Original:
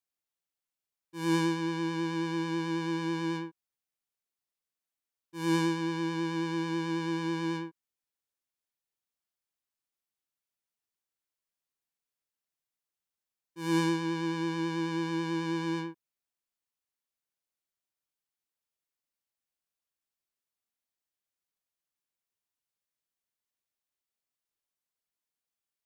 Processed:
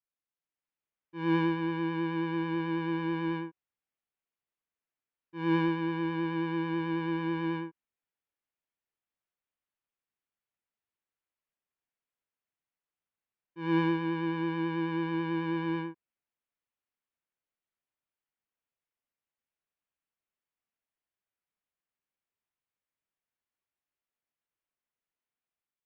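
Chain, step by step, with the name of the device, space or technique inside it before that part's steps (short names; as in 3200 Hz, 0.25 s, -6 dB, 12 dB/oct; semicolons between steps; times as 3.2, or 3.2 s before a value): action camera in a waterproof case (LPF 2900 Hz 24 dB/oct; AGC gain up to 6 dB; gain -5.5 dB; AAC 128 kbps 48000 Hz)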